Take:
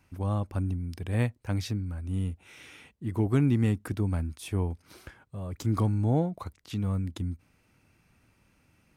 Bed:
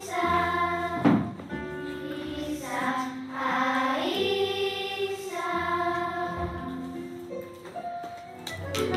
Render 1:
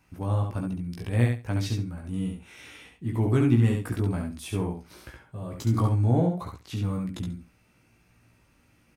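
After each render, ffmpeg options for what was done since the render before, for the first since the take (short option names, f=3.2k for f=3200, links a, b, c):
-filter_complex "[0:a]asplit=2[a][b];[b]adelay=17,volume=-3.5dB[c];[a][c]amix=inputs=2:normalize=0,aecho=1:1:69|138|207:0.596|0.101|0.0172"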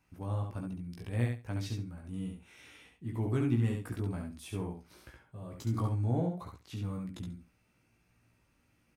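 -af "volume=-8.5dB"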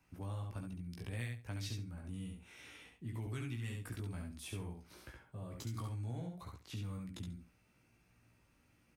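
-filter_complex "[0:a]acrossover=split=110|1700[a][b][c];[a]alimiter=level_in=17.5dB:limit=-24dB:level=0:latency=1,volume=-17.5dB[d];[b]acompressor=threshold=-46dB:ratio=6[e];[d][e][c]amix=inputs=3:normalize=0"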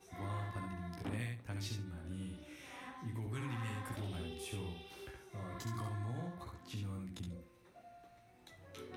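-filter_complex "[1:a]volume=-23dB[a];[0:a][a]amix=inputs=2:normalize=0"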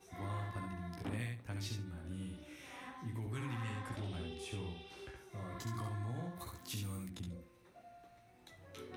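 -filter_complex "[0:a]asettb=1/sr,asplit=3[a][b][c];[a]atrim=end=3.634[d];[b]atrim=start=3.63:end=5.16,asetpts=PTS-STARTPTS,afade=t=in:d=0.004:c=qsin,afade=t=out:st=1.526:d=0.004:c=qsin,lowpass=8.4k[e];[c]atrim=start=5.156[f];[d][e]acrossfade=d=0.004:c1=hsin:c2=qsin[g];[g][f]acrossfade=d=0.004:c1=qsin:c2=hsin,asplit=3[h][i][j];[h]afade=t=out:st=6.35:d=0.02[k];[i]aemphasis=mode=production:type=75kf,afade=t=in:st=6.35:d=0.02,afade=t=out:st=7.08:d=0.02[l];[j]afade=t=in:st=7.08:d=0.02[m];[k][l][m]amix=inputs=3:normalize=0"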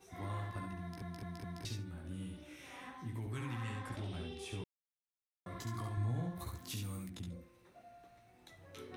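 -filter_complex "[0:a]asettb=1/sr,asplit=3[a][b][c];[a]atrim=end=5.974[d];[b]atrim=start=5.97:end=6.72,asetpts=PTS-STARTPTS,afade=t=in:d=0.004:c=qsin,afade=t=out:st=0.746:d=0.004:c=qsin,lowshelf=f=190:g=8[e];[c]atrim=start=6.716[f];[d][e]acrossfade=d=0.004:c1=hsin:c2=qsin[g];[g][f]acrossfade=d=0.004:c1=qsin:c2=hsin,asplit=7[h][i][j][k][l][m][n];[h]atrim=end=1.022[o];[i]atrim=start=0.808:end=1.022[p];[j]atrim=start=0.808:end=1.022[q];[k]atrim=start=0.808:end=1.022[r];[l]atrim=start=1.648:end=4.64,asetpts=PTS-STARTPTS,afade=t=out:st=2.988:d=0.004:c=hsin[s];[m]atrim=start=4.64:end=5.46,asetpts=PTS-STARTPTS,volume=0[t];[n]atrim=start=5.46,asetpts=PTS-STARTPTS,afade=t=in:d=0.004:c=hsin[u];[o][p]acrossfade=d=0.004:c1=hsin:c2=hsin[v];[v][q]acrossfade=d=0.004:c1=hsin:c2=hsin[w];[w][r]acrossfade=d=0.004:c1=hsin:c2=hsin[x];[s][t][u]concat=n=3:v=0:a=1[y];[x][y]acrossfade=d=0.004:c1=hsin:c2=hsin"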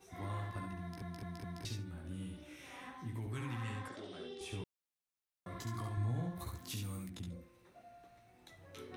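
-filter_complex "[0:a]asettb=1/sr,asplit=3[a][b][c];[a]atrim=end=3.884[d];[b]atrim=start=3.88:end=4.41,asetpts=PTS-STARTPTS,afade=t=in:d=0.004:c=qsin,afade=t=out:st=0.526:d=0.004:c=qsin,highpass=300,equalizer=f=440:t=q:w=4:g=6,equalizer=f=870:t=q:w=4:g=-7,equalizer=f=2.5k:t=q:w=4:g=-8,lowpass=f=8.2k:w=0.5412,lowpass=f=8.2k:w=1.3066[e];[c]atrim=start=4.406[f];[d][e]acrossfade=d=0.004:c1=hsin:c2=qsin[g];[g][f]acrossfade=d=0.004:c1=qsin:c2=hsin"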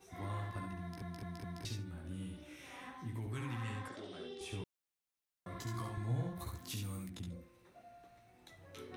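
-filter_complex "[0:a]asettb=1/sr,asplit=3[a][b][c];[a]atrim=end=5.644[d];[b]atrim=start=5.64:end=6.33,asetpts=PTS-STARTPTS,afade=t=in:d=0.004:c=qsin,afade=t=out:st=0.686:d=0.004:c=qsin,asplit=2[e][f];[f]adelay=15,volume=-4dB[g];[e][g]amix=inputs=2:normalize=0,atrim=end_sample=30429[h];[c]atrim=start=6.326[i];[d][h]acrossfade=d=0.004:c1=hsin:c2=qsin[j];[j][i]acrossfade=d=0.004:c1=qsin:c2=hsin"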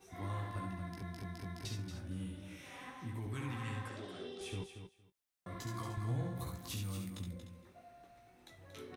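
-filter_complex "[0:a]asplit=2[a][b];[b]adelay=21,volume=-12.5dB[c];[a][c]amix=inputs=2:normalize=0,asplit=2[d][e];[e]aecho=0:1:231|462:0.355|0.0532[f];[d][f]amix=inputs=2:normalize=0"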